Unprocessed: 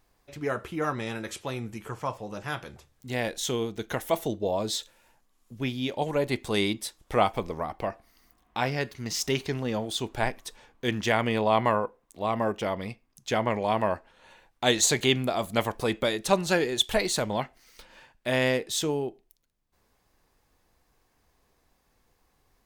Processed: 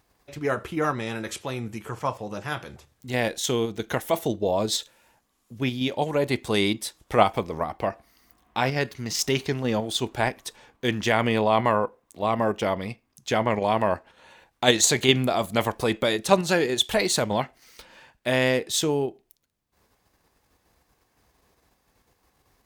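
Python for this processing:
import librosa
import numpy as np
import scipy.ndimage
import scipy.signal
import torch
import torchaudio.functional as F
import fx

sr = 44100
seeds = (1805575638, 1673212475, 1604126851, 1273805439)

p1 = scipy.signal.sosfilt(scipy.signal.butter(2, 48.0, 'highpass', fs=sr, output='sos'), x)
p2 = fx.level_steps(p1, sr, step_db=10)
p3 = p1 + F.gain(torch.from_numpy(p2), 2.0).numpy()
y = F.gain(torch.from_numpy(p3), -1.5).numpy()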